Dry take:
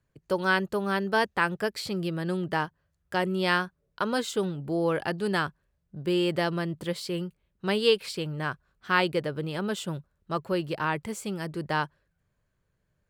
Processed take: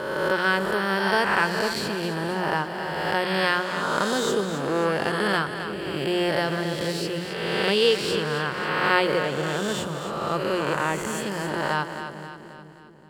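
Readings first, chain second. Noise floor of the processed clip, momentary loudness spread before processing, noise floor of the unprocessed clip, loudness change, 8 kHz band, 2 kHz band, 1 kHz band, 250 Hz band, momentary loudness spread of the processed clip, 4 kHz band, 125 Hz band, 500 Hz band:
−42 dBFS, 9 LU, −76 dBFS, +4.5 dB, +7.0 dB, +5.5 dB, +5.0 dB, +2.0 dB, 8 LU, +6.0 dB, +1.5 dB, +4.5 dB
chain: peak hold with a rise ahead of every peak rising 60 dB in 1.85 s
mains-hum notches 60/120/180 Hz
echo with a time of its own for lows and highs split 480 Hz, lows 443 ms, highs 266 ms, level −9 dB

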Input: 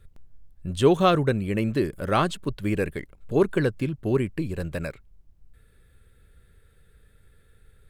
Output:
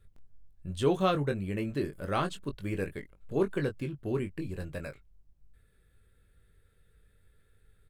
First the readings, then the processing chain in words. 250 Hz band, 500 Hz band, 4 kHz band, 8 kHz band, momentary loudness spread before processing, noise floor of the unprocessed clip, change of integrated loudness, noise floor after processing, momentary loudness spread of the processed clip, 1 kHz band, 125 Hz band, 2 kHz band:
−8.0 dB, −8.0 dB, −7.5 dB, −7.5 dB, 13 LU, −58 dBFS, −7.5 dB, −67 dBFS, 13 LU, −8.0 dB, −7.5 dB, −7.5 dB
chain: double-tracking delay 21 ms −7 dB
level −8.5 dB

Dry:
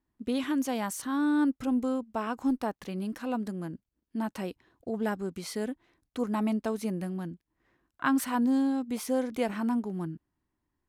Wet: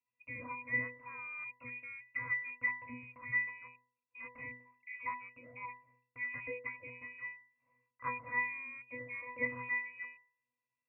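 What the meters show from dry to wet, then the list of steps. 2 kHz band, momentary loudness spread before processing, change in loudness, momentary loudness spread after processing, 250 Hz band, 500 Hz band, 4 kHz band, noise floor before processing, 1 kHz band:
+5.0 dB, 13 LU, −8.5 dB, 14 LU, −27.5 dB, −16.5 dB, below −30 dB, −83 dBFS, −9.5 dB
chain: voice inversion scrambler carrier 2,700 Hz
resonances in every octave B, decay 0.43 s
level +17 dB

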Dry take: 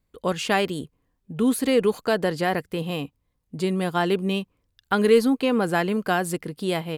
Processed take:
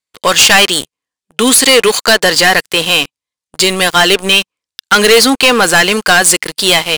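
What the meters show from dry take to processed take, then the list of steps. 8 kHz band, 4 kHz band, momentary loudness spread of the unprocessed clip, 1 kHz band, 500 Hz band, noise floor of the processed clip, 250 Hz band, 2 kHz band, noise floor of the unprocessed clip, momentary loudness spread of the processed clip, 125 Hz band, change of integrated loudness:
+26.5 dB, +24.5 dB, 13 LU, +13.5 dB, +10.0 dB, below −85 dBFS, +6.0 dB, +20.0 dB, −73 dBFS, 7 LU, +4.5 dB, +15.0 dB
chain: meter weighting curve ITU-R 468
leveller curve on the samples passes 5
level +1.5 dB

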